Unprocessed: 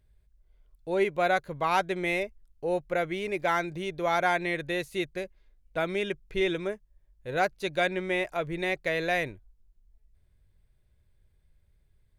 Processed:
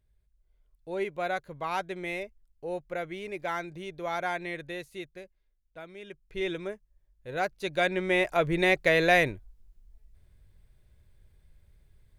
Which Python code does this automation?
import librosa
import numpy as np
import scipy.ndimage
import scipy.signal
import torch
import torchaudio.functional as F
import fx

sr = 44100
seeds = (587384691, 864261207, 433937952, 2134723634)

y = fx.gain(x, sr, db=fx.line((4.58, -6.0), (5.95, -16.5), (6.46, -4.0), (7.37, -4.0), (8.45, 6.0)))